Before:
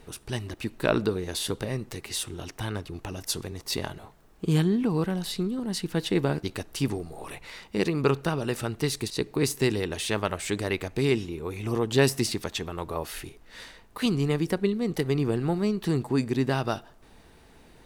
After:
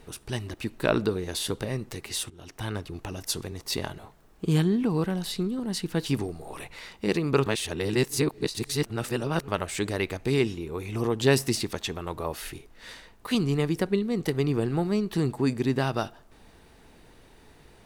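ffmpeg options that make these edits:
ffmpeg -i in.wav -filter_complex "[0:a]asplit=5[link_01][link_02][link_03][link_04][link_05];[link_01]atrim=end=2.3,asetpts=PTS-STARTPTS,afade=type=out:start_time=2.296:duration=0.004:curve=hsin:silence=0.112202[link_06];[link_02]atrim=start=2.3:end=6.062,asetpts=PTS-STARTPTS,afade=type=in:duration=0.39:silence=0.112202[link_07];[link_03]atrim=start=6.768:end=8.172[link_08];[link_04]atrim=start=8.168:end=10.192,asetpts=PTS-STARTPTS,areverse[link_09];[link_05]atrim=start=10.188[link_10];[link_06][link_07]concat=n=2:v=0:a=1[link_11];[link_11][link_08]acrossfade=duration=0.004:curve1=hsin:curve2=hsin[link_12];[link_12][link_09]acrossfade=duration=0.004:curve1=hsin:curve2=hsin[link_13];[link_13][link_10]acrossfade=duration=0.004:curve1=hsin:curve2=hsin" out.wav

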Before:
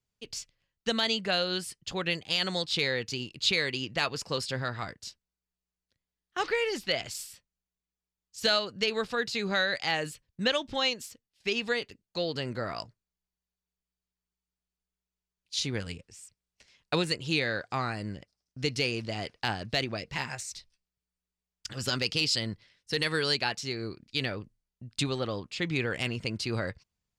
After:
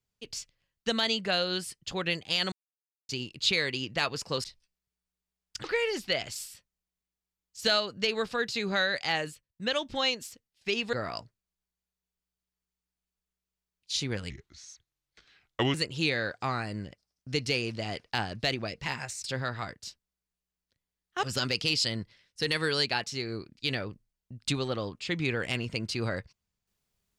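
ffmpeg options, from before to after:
ffmpeg -i in.wav -filter_complex "[0:a]asplit=12[link_01][link_02][link_03][link_04][link_05][link_06][link_07][link_08][link_09][link_10][link_11][link_12];[link_01]atrim=end=2.52,asetpts=PTS-STARTPTS,afade=type=out:start_time=2.516:duration=0.004:curve=hsin[link_13];[link_02]atrim=start=2.52:end=3.09,asetpts=PTS-STARTPTS,volume=0[link_14];[link_03]atrim=start=3.09:end=4.442,asetpts=PTS-STARTPTS,afade=type=in:duration=0.004:curve=hsin[link_15];[link_04]atrim=start=20.538:end=21.742[link_16];[link_05]atrim=start=6.428:end=10.25,asetpts=PTS-STARTPTS,afade=type=out:start_time=3.542:duration=0.28:silence=0.223872[link_17];[link_06]atrim=start=10.25:end=10.31,asetpts=PTS-STARTPTS,volume=-13dB[link_18];[link_07]atrim=start=10.31:end=11.722,asetpts=PTS-STARTPTS,afade=type=in:duration=0.28:silence=0.223872[link_19];[link_08]atrim=start=12.558:end=15.934[link_20];[link_09]atrim=start=15.93:end=17.04,asetpts=PTS-STARTPTS,asetrate=33957,aresample=44100[link_21];[link_10]atrim=start=17.036:end=20.542[link_22];[link_11]atrim=start=4.438:end=6.432[link_23];[link_12]atrim=start=21.738[link_24];[link_13][link_14][link_15]concat=n=3:v=0:a=1[link_25];[link_25][link_16]acrossfade=duration=0.004:curve1=hsin:curve2=hsin[link_26];[link_17][link_18][link_19]concat=n=3:v=0:a=1[link_27];[link_26][link_27]acrossfade=duration=0.004:curve1=hsin:curve2=hsin[link_28];[link_28][link_20]acrossfade=duration=0.004:curve1=hsin:curve2=hsin[link_29];[link_29][link_21]acrossfade=duration=0.004:curve1=hsin:curve2=hsin[link_30];[link_30][link_22]acrossfade=duration=0.004:curve1=hsin:curve2=hsin[link_31];[link_31][link_23]acrossfade=duration=0.004:curve1=hsin:curve2=hsin[link_32];[link_32][link_24]acrossfade=duration=0.004:curve1=hsin:curve2=hsin" out.wav

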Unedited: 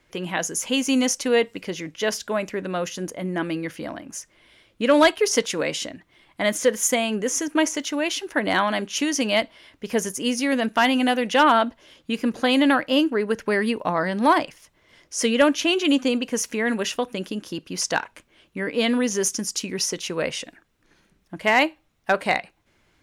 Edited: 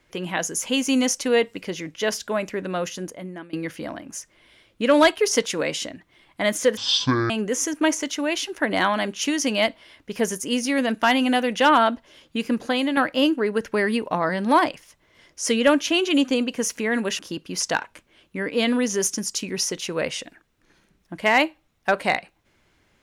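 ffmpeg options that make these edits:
ffmpeg -i in.wav -filter_complex "[0:a]asplit=6[link_01][link_02][link_03][link_04][link_05][link_06];[link_01]atrim=end=3.53,asetpts=PTS-STARTPTS,afade=type=out:start_time=2.89:duration=0.64:silence=0.0668344[link_07];[link_02]atrim=start=3.53:end=6.774,asetpts=PTS-STARTPTS,afade=type=in:duration=0.004:curve=hsin:silence=0.0668344[link_08];[link_03]atrim=start=6.77:end=7.04,asetpts=PTS-STARTPTS,asetrate=22491,aresample=44100,atrim=end_sample=23347,asetpts=PTS-STARTPTS[link_09];[link_04]atrim=start=7.036:end=12.71,asetpts=PTS-STARTPTS,afade=type=out:start_time=5.244:duration=0.43:silence=0.398107[link_10];[link_05]atrim=start=12.71:end=16.932,asetpts=PTS-STARTPTS,afade=type=in:duration=0.004:curve=hsin:silence=0.398107[link_11];[link_06]atrim=start=17.398[link_12];[link_07][link_08]concat=n=2:v=0:a=1[link_13];[link_13][link_09]acrossfade=duration=0.004:curve1=hsin:curve2=hsin[link_14];[link_10][link_11]concat=n=2:v=0:a=1[link_15];[link_14][link_15]acrossfade=duration=0.004:curve1=hsin:curve2=hsin[link_16];[link_16][link_12]acrossfade=duration=0.004:curve1=hsin:curve2=hsin" out.wav

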